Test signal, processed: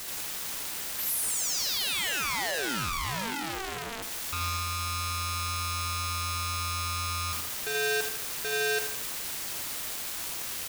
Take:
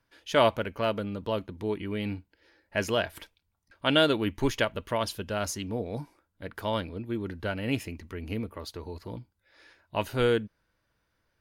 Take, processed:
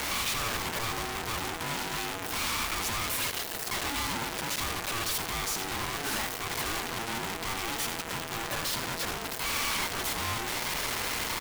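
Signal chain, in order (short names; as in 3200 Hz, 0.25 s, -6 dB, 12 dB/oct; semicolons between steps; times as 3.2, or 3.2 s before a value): infinite clipping; HPF 390 Hz 6 dB/oct; feedback echo 81 ms, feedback 43%, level -10 dB; in parallel at -4 dB: bit-crush 5-bit; on the sum: polarity switched at an audio rate 570 Hz; gain -3.5 dB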